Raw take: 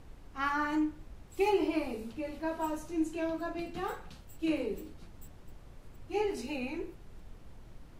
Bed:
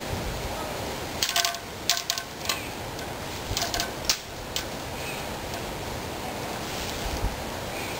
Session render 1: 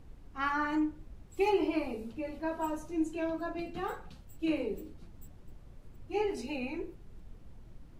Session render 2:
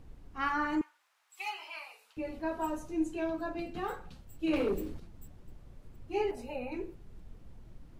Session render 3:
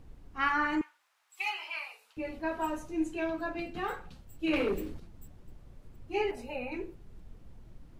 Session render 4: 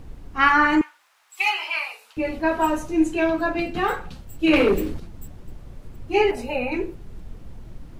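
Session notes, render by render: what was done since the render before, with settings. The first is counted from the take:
broadband denoise 6 dB, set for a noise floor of −53 dBFS
0:00.81–0:02.17: high-pass filter 1,000 Hz 24 dB per octave; 0:04.53–0:05.00: leveller curve on the samples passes 2; 0:06.31–0:06.72: drawn EQ curve 200 Hz 0 dB, 330 Hz −13 dB, 560 Hz +6 dB, 5,200 Hz −12 dB, 14,000 Hz +1 dB
dynamic equaliser 2,200 Hz, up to +7 dB, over −52 dBFS, Q 0.93
level +12 dB

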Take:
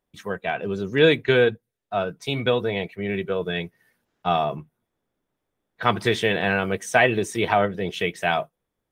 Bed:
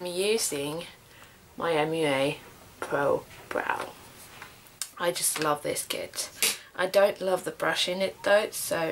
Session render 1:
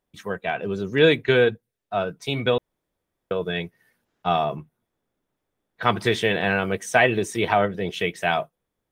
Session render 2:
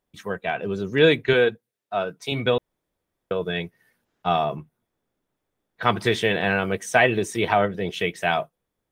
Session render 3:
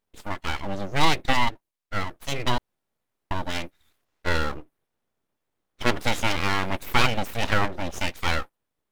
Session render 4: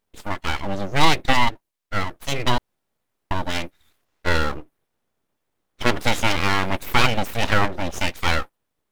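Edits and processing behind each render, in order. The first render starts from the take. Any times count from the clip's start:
0:02.58–0:03.31: fill with room tone
0:01.33–0:02.32: high-pass filter 230 Hz 6 dB per octave
full-wave rectification
level +4 dB; brickwall limiter −1 dBFS, peak gain reduction 1.5 dB

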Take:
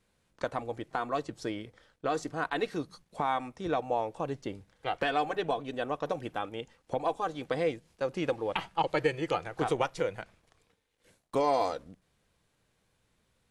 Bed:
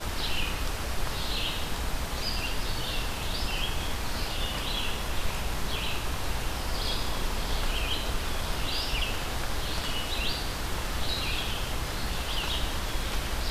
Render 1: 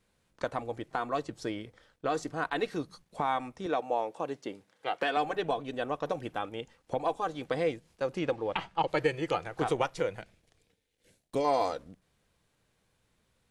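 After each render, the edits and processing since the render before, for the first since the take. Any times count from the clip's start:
0:03.66–0:05.17: high-pass filter 240 Hz
0:08.19–0:08.88: high-frequency loss of the air 55 metres
0:10.19–0:11.45: parametric band 1,100 Hz −10.5 dB 1 octave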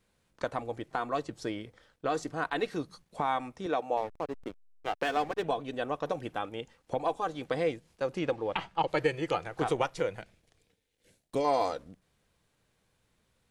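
0:03.97–0:05.43: slack as between gear wheels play −33 dBFS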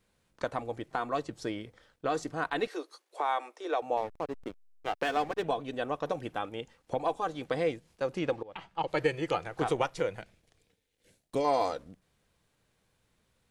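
0:02.67–0:03.82: Butterworth high-pass 330 Hz 48 dB per octave
0:08.43–0:09.03: fade in linear, from −21 dB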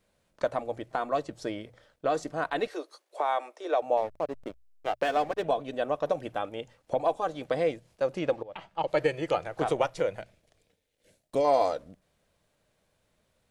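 parametric band 610 Hz +9 dB 0.37 octaves
mains-hum notches 60/120 Hz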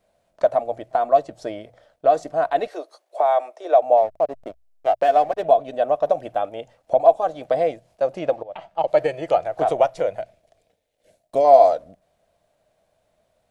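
parametric band 670 Hz +15 dB 0.51 octaves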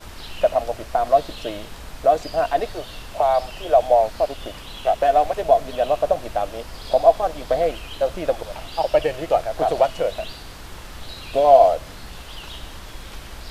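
mix in bed −6 dB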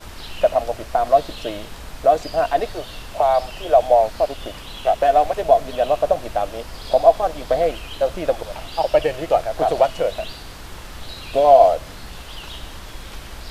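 level +1.5 dB
brickwall limiter −1 dBFS, peak gain reduction 1.5 dB

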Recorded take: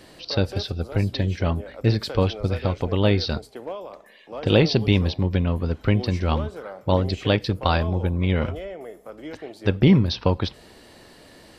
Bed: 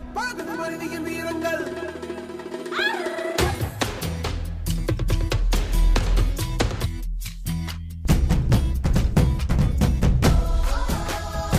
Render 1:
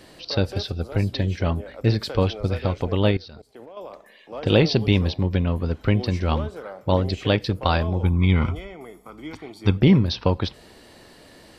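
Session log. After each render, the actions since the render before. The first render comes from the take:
0:03.11–0:03.77: output level in coarse steps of 21 dB
0:08.03–0:09.78: comb filter 0.9 ms, depth 70%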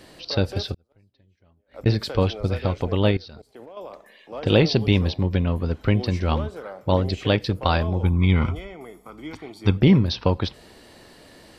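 0:00.74–0:01.86: gate with flip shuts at −26 dBFS, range −37 dB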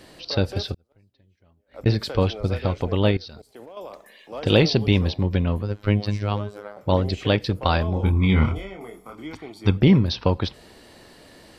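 0:03.21–0:04.70: high-shelf EQ 4,900 Hz +8 dB
0:05.62–0:06.77: phases set to zero 103 Hz
0:07.93–0:09.25: double-tracking delay 26 ms −4 dB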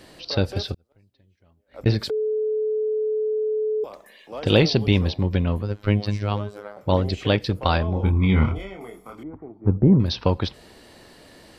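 0:02.10–0:03.84: beep over 431 Hz −20.5 dBFS
0:07.78–0:08.60: high-shelf EQ 4,500 Hz −9 dB
0:09.23–0:10.00: Bessel low-pass filter 720 Hz, order 4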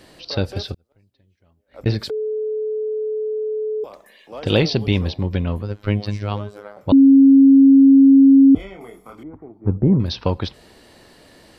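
0:06.92–0:08.55: beep over 272 Hz −6 dBFS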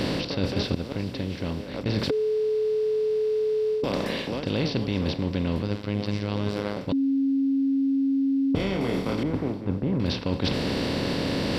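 compressor on every frequency bin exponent 0.4
reversed playback
downward compressor 12 to 1, threshold −22 dBFS, peak gain reduction 15.5 dB
reversed playback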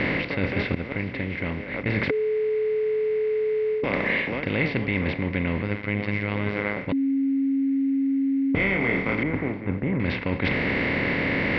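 floating-point word with a short mantissa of 6 bits
low-pass with resonance 2,100 Hz, resonance Q 7.6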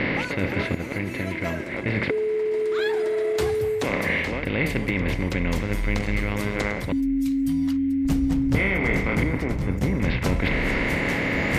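mix in bed −8 dB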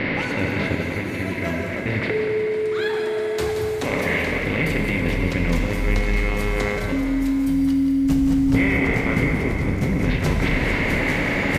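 single-tap delay 177 ms −9 dB
dense smooth reverb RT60 3.4 s, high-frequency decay 0.9×, DRR 2 dB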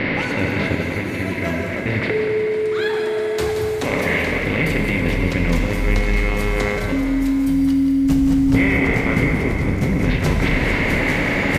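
level +2.5 dB

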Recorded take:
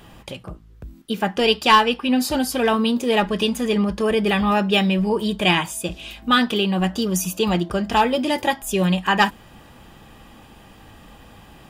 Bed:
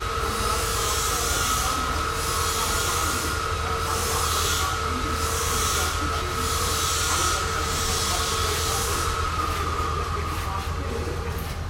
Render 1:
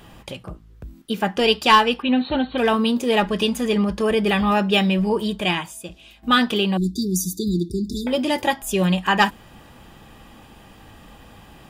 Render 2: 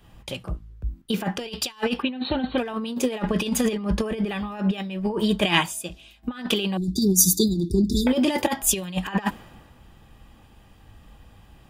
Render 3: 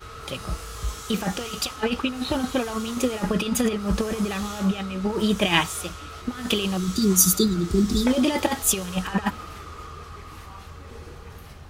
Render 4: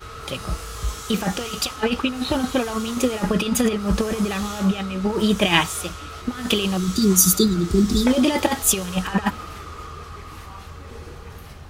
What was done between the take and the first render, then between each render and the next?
0:02.02–0:02.58: linear-phase brick-wall low-pass 4,400 Hz; 0:05.17–0:06.23: fade out quadratic, to −11.5 dB; 0:06.77–0:08.07: linear-phase brick-wall band-stop 430–3,500 Hz
compressor whose output falls as the input rises −23 dBFS, ratio −0.5; multiband upward and downward expander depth 70%
mix in bed −13.5 dB
level +3 dB; brickwall limiter −2 dBFS, peak gain reduction 2.5 dB

